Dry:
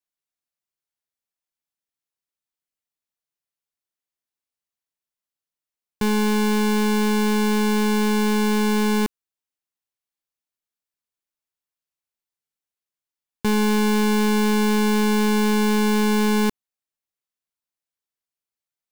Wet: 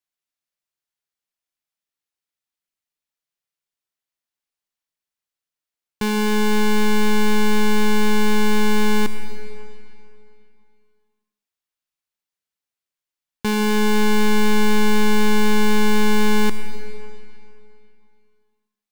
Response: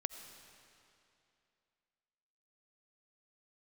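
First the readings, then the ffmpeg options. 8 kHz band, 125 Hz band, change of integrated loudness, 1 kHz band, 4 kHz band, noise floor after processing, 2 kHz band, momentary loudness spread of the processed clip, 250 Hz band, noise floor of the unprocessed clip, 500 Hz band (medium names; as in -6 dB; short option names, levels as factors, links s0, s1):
+0.5 dB, no reading, 0.0 dB, +1.0 dB, +2.5 dB, under -85 dBFS, +3.0 dB, 9 LU, -1.0 dB, under -85 dBFS, +0.5 dB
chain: -filter_complex "[0:a]equalizer=f=2700:t=o:w=2.7:g=3.5[s0];[1:a]atrim=start_sample=2205[s1];[s0][s1]afir=irnorm=-1:irlink=0"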